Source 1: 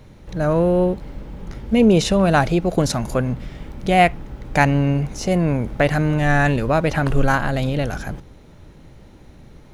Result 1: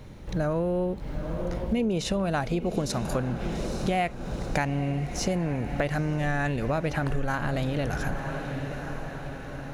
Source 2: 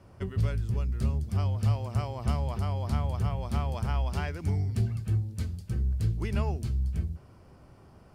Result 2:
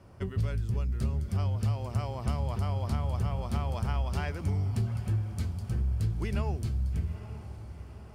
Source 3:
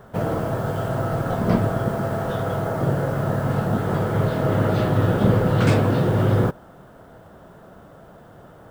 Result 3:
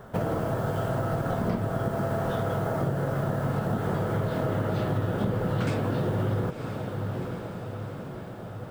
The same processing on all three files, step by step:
echo that smears into a reverb 886 ms, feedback 57%, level -15 dB; compression, threshold -24 dBFS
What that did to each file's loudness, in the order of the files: -10.5 LU, -1.5 LU, -7.0 LU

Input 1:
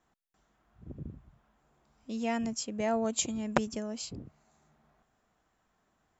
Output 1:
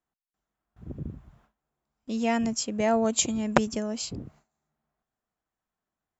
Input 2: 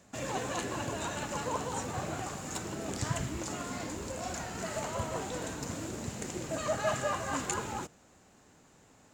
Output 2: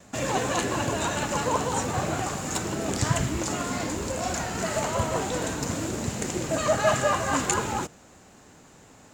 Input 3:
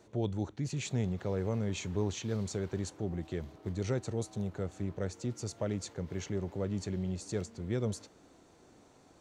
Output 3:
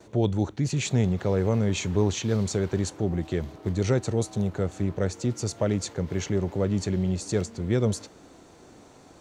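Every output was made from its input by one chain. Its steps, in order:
gate with hold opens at -55 dBFS; normalise loudness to -27 LUFS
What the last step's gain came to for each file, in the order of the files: +6.0 dB, +8.5 dB, +9.5 dB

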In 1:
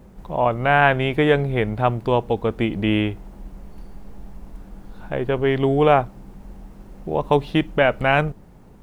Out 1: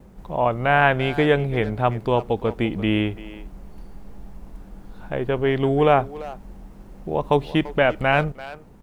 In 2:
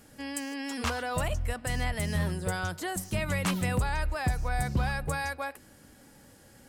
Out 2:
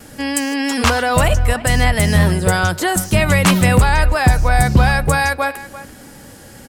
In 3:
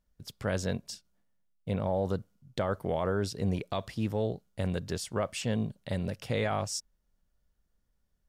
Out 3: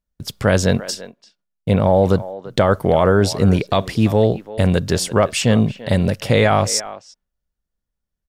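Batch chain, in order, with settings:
gate with hold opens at -48 dBFS; speakerphone echo 340 ms, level -15 dB; peak normalisation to -3 dBFS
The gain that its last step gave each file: -1.0 dB, +16.0 dB, +15.5 dB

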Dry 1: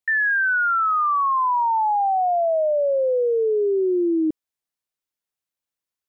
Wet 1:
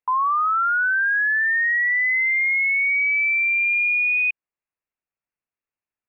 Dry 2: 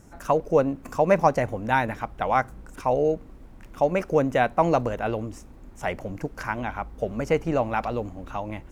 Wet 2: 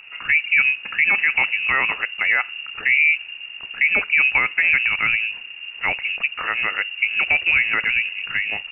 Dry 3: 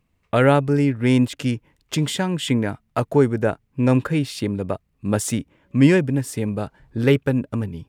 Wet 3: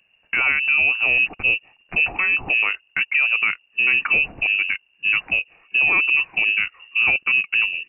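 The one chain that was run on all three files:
peak limiter -16 dBFS; frequency inversion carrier 2.8 kHz; normalise loudness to -18 LUFS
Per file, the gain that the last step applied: 0.0 dB, +7.5 dB, +5.0 dB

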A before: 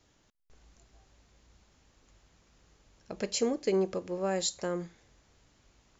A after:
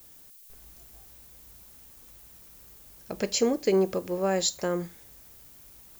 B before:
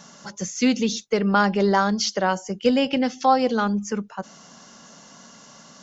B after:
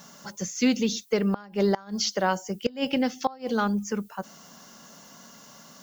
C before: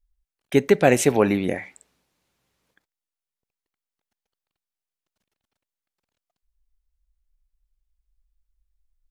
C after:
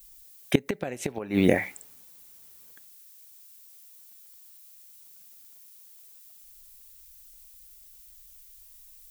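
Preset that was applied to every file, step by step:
added noise violet -57 dBFS; inverted gate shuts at -9 dBFS, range -24 dB; normalise loudness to -27 LUFS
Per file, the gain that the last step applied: +5.0 dB, -2.5 dB, +5.0 dB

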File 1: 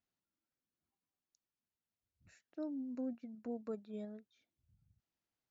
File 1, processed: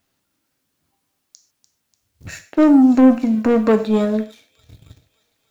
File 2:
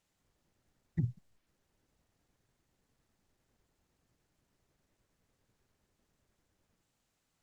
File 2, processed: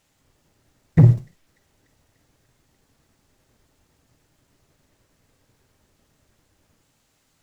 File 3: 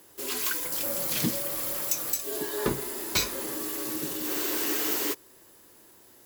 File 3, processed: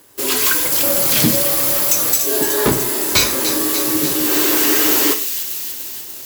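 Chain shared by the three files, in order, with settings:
feedback echo behind a high-pass 294 ms, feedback 70%, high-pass 3.2 kHz, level -9 dB; waveshaping leveller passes 2; gated-style reverb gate 170 ms falling, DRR 7 dB; peak normalisation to -3 dBFS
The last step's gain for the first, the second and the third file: +24.5 dB, +16.5 dB, +6.5 dB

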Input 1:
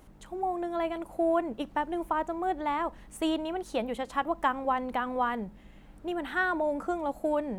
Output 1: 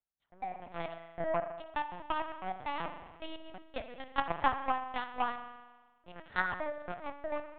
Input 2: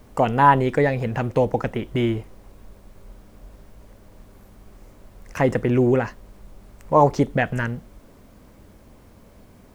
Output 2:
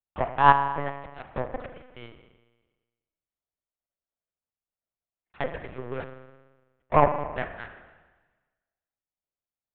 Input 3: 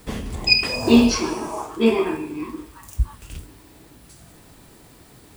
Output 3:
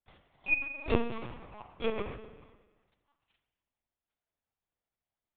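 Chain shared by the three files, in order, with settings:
high-pass 450 Hz 12 dB/octave; power-law waveshaper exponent 2; low-pass that closes with the level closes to 1.7 kHz, closed at -30 dBFS; spring tank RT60 1.3 s, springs 38 ms, chirp 55 ms, DRR 7 dB; LPC vocoder at 8 kHz pitch kept; trim +4 dB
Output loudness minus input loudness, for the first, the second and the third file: -6.5 LU, -5.0 LU, -13.5 LU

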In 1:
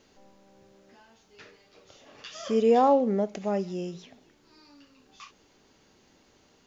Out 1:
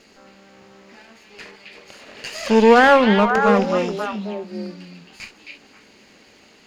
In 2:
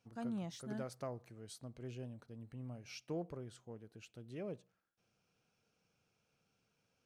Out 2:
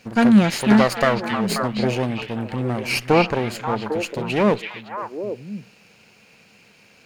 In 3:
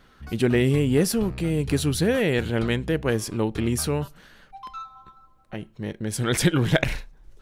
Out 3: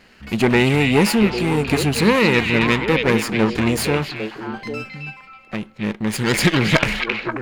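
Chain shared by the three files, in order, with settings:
comb filter that takes the minimum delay 0.42 ms; peaking EQ 210 Hz +8.5 dB 0.21 oct; overdrive pedal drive 11 dB, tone 4.2 kHz, clips at -5 dBFS; on a send: repeats whose band climbs or falls 267 ms, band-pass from 2.9 kHz, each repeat -1.4 oct, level -0.5 dB; on the sum: peak normalisation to -2 dBFS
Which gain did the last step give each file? +8.0 dB, +24.5 dB, +4.5 dB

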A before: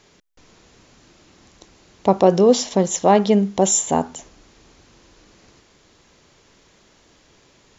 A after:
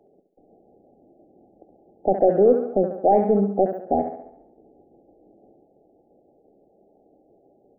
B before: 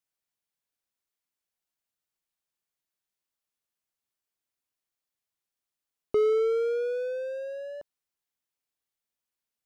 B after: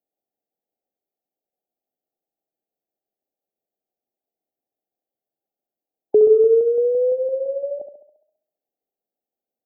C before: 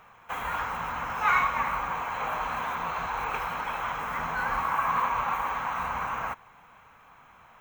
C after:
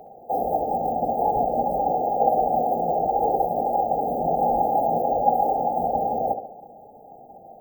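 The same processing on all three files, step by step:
three-band isolator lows -18 dB, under 220 Hz, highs -13 dB, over 3.6 kHz; tremolo saw down 5.9 Hz, depth 35%; saturation -12.5 dBFS; brick-wall FIR band-stop 840–12000 Hz; on a send: tape echo 68 ms, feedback 56%, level -8 dB, low-pass 3.1 kHz; on the sum: peak normalisation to -6 dBFS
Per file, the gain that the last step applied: +3.0 dB, +12.5 dB, +19.0 dB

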